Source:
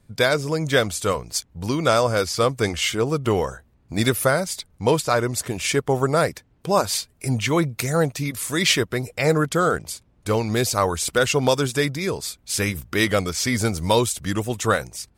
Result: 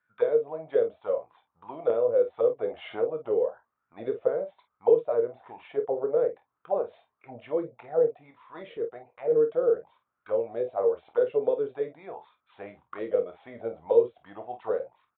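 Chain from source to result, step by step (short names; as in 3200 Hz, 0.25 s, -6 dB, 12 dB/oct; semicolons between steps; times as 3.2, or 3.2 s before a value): auto-wah 460–1500 Hz, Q 9.7, down, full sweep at -15.5 dBFS; 1.9–3.26 upward compressor, threshold -28 dBFS; early reflections 26 ms -9.5 dB, 50 ms -11.5 dB; 8.07–9.33 transient shaper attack -7 dB, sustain -3 dB; downsampling 8000 Hz; gain +3.5 dB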